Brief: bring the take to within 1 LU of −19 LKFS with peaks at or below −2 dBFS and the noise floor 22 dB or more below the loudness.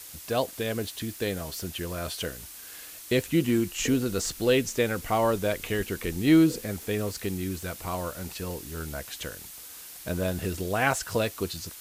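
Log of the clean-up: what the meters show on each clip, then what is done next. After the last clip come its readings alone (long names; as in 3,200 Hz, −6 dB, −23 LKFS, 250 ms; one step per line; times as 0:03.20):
background noise floor −44 dBFS; target noise floor −51 dBFS; integrated loudness −28.5 LKFS; sample peak −8.0 dBFS; target loudness −19.0 LKFS
→ broadband denoise 7 dB, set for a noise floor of −44 dBFS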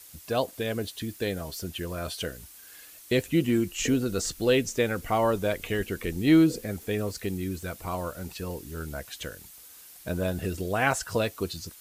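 background noise floor −49 dBFS; target noise floor −51 dBFS
→ broadband denoise 6 dB, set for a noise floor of −49 dBFS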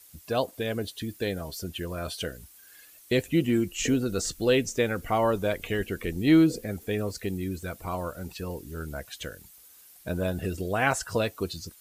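background noise floor −54 dBFS; integrated loudness −28.5 LKFS; sample peak −8.5 dBFS; target loudness −19.0 LKFS
→ level +9.5 dB
brickwall limiter −2 dBFS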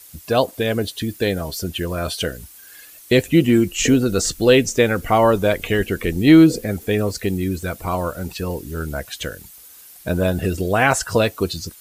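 integrated loudness −19.0 LKFS; sample peak −2.0 dBFS; background noise floor −44 dBFS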